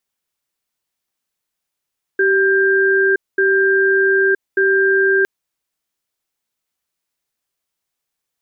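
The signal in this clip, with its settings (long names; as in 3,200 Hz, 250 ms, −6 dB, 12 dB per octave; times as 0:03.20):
tone pair in a cadence 387 Hz, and 1,590 Hz, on 0.97 s, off 0.22 s, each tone −14 dBFS 3.06 s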